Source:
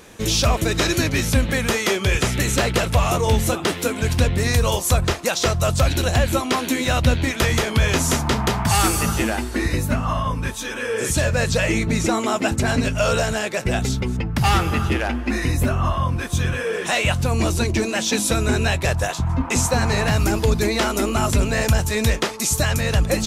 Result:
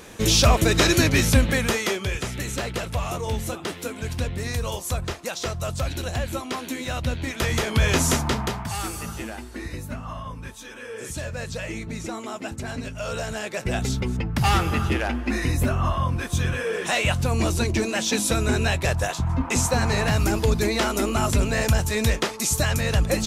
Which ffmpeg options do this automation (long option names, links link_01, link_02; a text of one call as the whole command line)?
ffmpeg -i in.wav -af "volume=19.5dB,afade=type=out:start_time=1.24:duration=0.91:silence=0.298538,afade=type=in:start_time=7.17:duration=0.86:silence=0.375837,afade=type=out:start_time=8.03:duration=0.67:silence=0.266073,afade=type=in:start_time=13.01:duration=0.98:silence=0.334965" out.wav